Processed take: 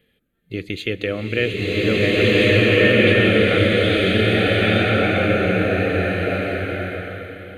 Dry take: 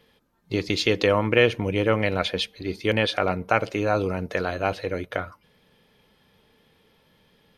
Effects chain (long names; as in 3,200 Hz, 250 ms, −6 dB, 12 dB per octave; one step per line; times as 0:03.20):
phaser with its sweep stopped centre 2,300 Hz, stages 4
slow-attack reverb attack 1,700 ms, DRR −11 dB
level −1 dB